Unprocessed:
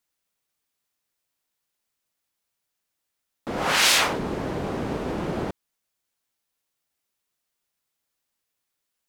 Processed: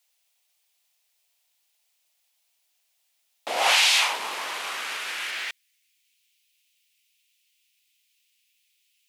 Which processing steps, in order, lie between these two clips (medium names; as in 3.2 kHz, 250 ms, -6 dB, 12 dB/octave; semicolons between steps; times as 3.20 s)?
3.48–5.31 s: CVSD coder 64 kbps; resonant high shelf 1.9 kHz +9 dB, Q 1.5; compression 6:1, threshold -18 dBFS, peak gain reduction 9.5 dB; high-pass sweep 700 Hz -> 2.5 kHz, 3.51–6.19 s